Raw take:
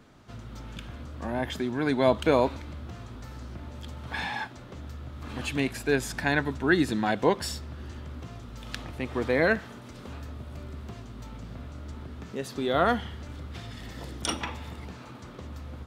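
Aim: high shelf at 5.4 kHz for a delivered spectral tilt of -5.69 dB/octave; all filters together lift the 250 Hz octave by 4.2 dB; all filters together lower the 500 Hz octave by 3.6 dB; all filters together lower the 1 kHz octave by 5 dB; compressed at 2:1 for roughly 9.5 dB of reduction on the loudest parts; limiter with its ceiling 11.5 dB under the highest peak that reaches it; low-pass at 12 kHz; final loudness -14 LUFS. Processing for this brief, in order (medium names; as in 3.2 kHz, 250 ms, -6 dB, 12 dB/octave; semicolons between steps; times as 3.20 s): low-pass 12 kHz; peaking EQ 250 Hz +7 dB; peaking EQ 500 Hz -5.5 dB; peaking EQ 1 kHz -5 dB; treble shelf 5.4 kHz -7 dB; compression 2:1, threshold -35 dBFS; trim +25.5 dB; peak limiter -2.5 dBFS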